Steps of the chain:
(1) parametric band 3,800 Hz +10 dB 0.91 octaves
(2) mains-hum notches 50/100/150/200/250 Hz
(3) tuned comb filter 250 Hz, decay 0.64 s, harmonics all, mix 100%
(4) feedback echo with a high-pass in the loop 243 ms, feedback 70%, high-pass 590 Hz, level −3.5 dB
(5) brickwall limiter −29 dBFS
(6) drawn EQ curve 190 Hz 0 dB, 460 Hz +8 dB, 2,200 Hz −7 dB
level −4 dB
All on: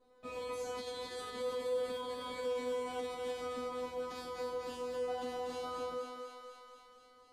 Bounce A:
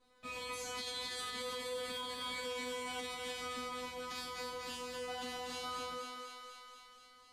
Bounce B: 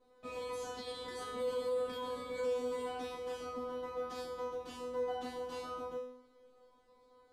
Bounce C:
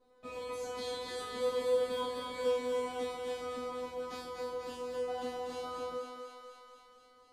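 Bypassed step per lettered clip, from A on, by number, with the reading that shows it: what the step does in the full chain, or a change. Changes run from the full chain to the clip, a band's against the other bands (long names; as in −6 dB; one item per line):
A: 6, 500 Hz band −10.0 dB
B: 4, 125 Hz band +2.0 dB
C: 5, change in crest factor +3.5 dB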